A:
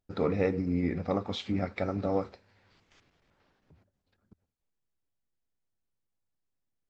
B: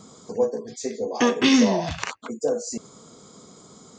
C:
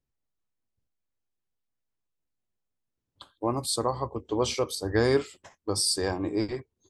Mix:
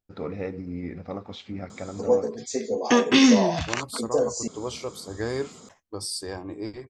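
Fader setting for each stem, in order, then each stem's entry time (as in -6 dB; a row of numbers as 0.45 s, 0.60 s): -4.5 dB, +1.0 dB, -6.0 dB; 0.00 s, 1.70 s, 0.25 s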